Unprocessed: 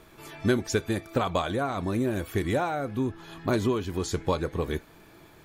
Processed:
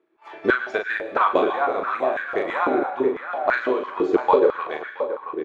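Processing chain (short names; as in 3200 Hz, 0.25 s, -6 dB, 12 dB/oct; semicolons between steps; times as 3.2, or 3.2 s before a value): gate -43 dBFS, range -23 dB; Chebyshev low-pass 2300 Hz, order 2; transient shaper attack +2 dB, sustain -8 dB; doubler 39 ms -5 dB; tape echo 0.673 s, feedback 39%, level -7 dB, low-pass 1900 Hz; reverb RT60 0.65 s, pre-delay 96 ms, DRR 9.5 dB; stepped high-pass 6 Hz 350–1600 Hz; gain +3 dB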